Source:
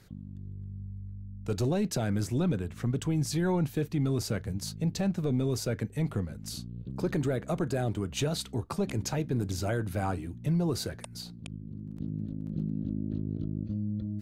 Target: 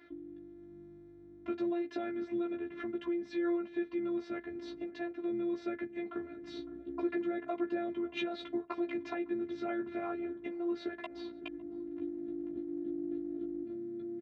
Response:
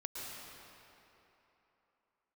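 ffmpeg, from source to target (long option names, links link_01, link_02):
-filter_complex "[0:a]lowpass=frequency=2800:width=0.5412,lowpass=frequency=2800:width=1.3066,asplit=2[link_01][link_02];[link_02]adelay=556,lowpass=frequency=1200:poles=1,volume=-20dB,asplit=2[link_03][link_04];[link_04]adelay=556,lowpass=frequency=1200:poles=1,volume=0.51,asplit=2[link_05][link_06];[link_06]adelay=556,lowpass=frequency=1200:poles=1,volume=0.51,asplit=2[link_07][link_08];[link_08]adelay=556,lowpass=frequency=1200:poles=1,volume=0.51[link_09];[link_01][link_03][link_05][link_07][link_09]amix=inputs=5:normalize=0,acompressor=threshold=-35dB:ratio=6,afftfilt=real='hypot(re,im)*cos(PI*b)':imag='0':win_size=512:overlap=0.75,highpass=170,asplit=2[link_10][link_11];[link_11]adelay=14,volume=-2.5dB[link_12];[link_10][link_12]amix=inputs=2:normalize=0,volume=6.5dB"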